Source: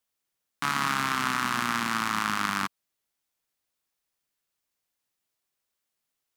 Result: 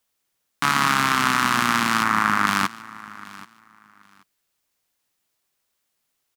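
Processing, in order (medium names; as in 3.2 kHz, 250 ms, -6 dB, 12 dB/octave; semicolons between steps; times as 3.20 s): 2.03–2.47 s: resonant high shelf 2.4 kHz -6 dB, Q 1.5; feedback delay 781 ms, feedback 20%, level -19.5 dB; trim +7.5 dB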